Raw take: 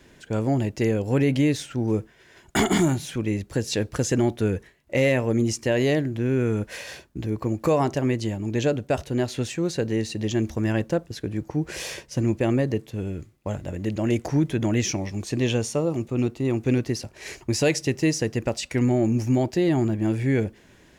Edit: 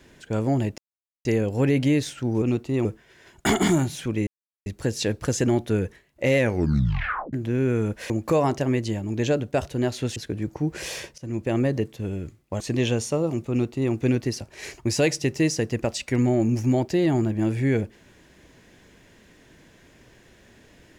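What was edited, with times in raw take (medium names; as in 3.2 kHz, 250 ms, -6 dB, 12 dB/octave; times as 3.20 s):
0.78 s: insert silence 0.47 s
3.37 s: insert silence 0.39 s
5.09 s: tape stop 0.95 s
6.81–7.46 s: delete
9.52–11.10 s: delete
12.12–12.69 s: fade in equal-power, from -20 dB
13.54–15.23 s: delete
16.13–16.56 s: copy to 1.95 s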